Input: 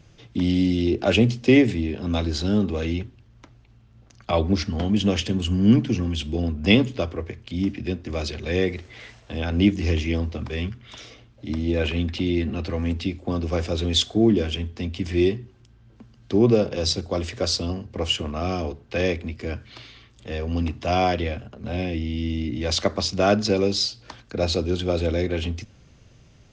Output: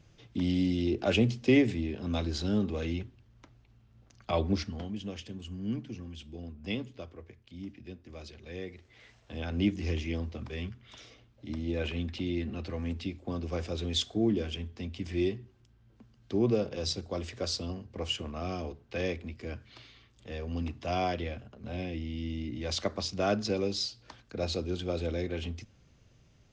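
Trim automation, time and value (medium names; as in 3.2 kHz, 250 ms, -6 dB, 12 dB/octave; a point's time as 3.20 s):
4.55 s -7.5 dB
5.00 s -18 dB
8.75 s -18 dB
9.38 s -9.5 dB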